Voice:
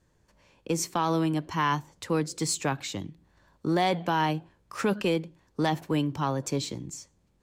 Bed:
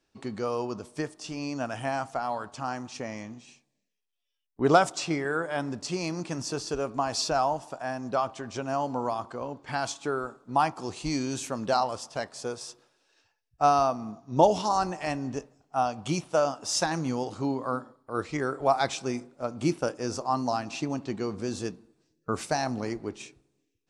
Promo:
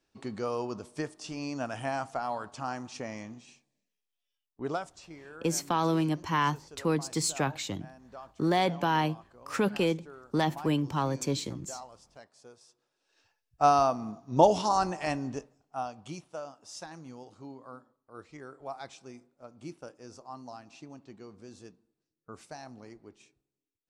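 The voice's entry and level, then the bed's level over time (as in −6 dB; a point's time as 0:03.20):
4.75 s, −1.0 dB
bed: 0:04.36 −2.5 dB
0:04.93 −19 dB
0:12.73 −19 dB
0:13.25 −0.5 dB
0:15.13 −0.5 dB
0:16.46 −16.5 dB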